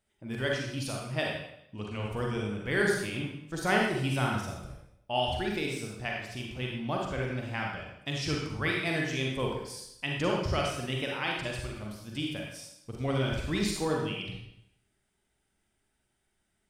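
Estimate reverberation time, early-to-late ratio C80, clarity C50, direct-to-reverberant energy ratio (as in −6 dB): 0.75 s, 4.5 dB, 1.0 dB, −1.5 dB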